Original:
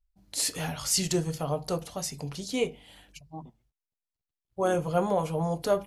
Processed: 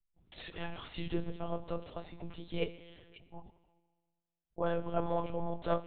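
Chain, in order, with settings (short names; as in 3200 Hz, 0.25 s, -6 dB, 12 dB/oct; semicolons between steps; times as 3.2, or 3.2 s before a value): plate-style reverb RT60 1.6 s, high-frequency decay 0.95×, DRR 12.5 dB; monotone LPC vocoder at 8 kHz 170 Hz; gain -6.5 dB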